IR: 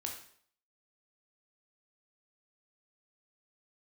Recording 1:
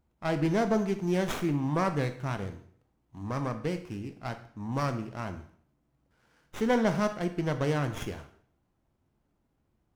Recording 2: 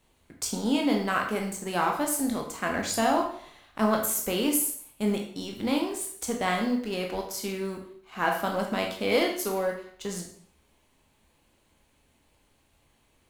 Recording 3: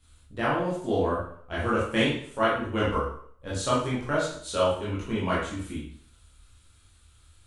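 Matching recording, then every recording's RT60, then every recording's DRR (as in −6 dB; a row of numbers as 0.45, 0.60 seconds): 2; 0.60, 0.60, 0.60 seconds; 8.0, 1.0, −8.5 decibels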